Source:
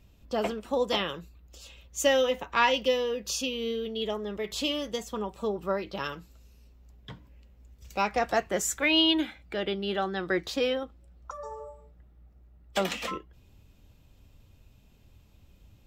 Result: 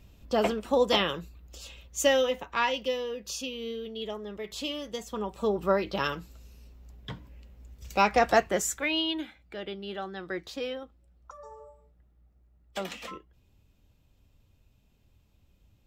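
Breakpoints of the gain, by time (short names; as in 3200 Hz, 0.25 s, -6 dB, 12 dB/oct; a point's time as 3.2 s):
1.65 s +3.5 dB
2.74 s -4.5 dB
4.84 s -4.5 dB
5.61 s +4.5 dB
8.36 s +4.5 dB
9.04 s -7 dB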